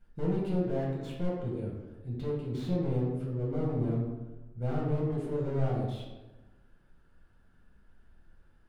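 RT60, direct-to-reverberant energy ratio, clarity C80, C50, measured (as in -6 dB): 1.1 s, -5.5 dB, 4.0 dB, 1.0 dB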